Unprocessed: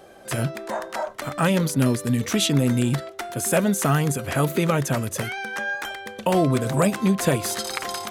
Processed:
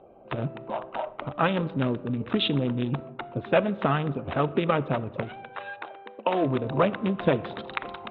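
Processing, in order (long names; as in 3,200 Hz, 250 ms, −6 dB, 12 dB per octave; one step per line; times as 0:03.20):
adaptive Wiener filter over 25 samples
Chebyshev low-pass with heavy ripple 3,800 Hz, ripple 3 dB
harmonic and percussive parts rebalanced percussive +7 dB
0:05.41–0:06.44: high-pass filter 490 Hz → 200 Hz 24 dB per octave
convolution reverb RT60 1.5 s, pre-delay 4 ms, DRR 17.5 dB
level −4.5 dB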